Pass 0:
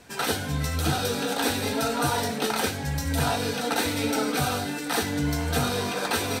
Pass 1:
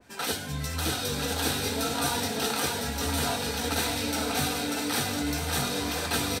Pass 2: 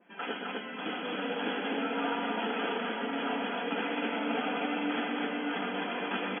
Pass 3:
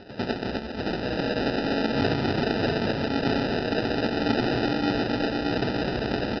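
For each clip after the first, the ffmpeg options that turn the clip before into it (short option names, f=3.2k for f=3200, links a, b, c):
-filter_complex "[0:a]flanger=delay=3.2:depth=1.8:regen=-70:speed=0.98:shape=sinusoidal,asplit=2[a][b];[b]aecho=0:1:590|1003|1292|1494|1636:0.631|0.398|0.251|0.158|0.1[c];[a][c]amix=inputs=2:normalize=0,adynamicequalizer=threshold=0.00794:dfrequency=2400:dqfactor=0.7:tfrequency=2400:tqfactor=0.7:attack=5:release=100:ratio=0.375:range=2.5:mode=boostabove:tftype=highshelf,volume=-1.5dB"
-af "afftfilt=real='re*between(b*sr/4096,170,3400)':imag='im*between(b*sr/4096,170,3400)':win_size=4096:overlap=0.75,flanger=delay=5.2:depth=6.7:regen=-56:speed=0.42:shape=triangular,aecho=1:1:122.4|259.5:0.447|0.794"
-af "highshelf=f=2.1k:t=q:w=1.5:g=-12,acompressor=mode=upward:threshold=-43dB:ratio=2.5,aresample=11025,acrusher=samples=10:mix=1:aa=0.000001,aresample=44100,volume=7dB"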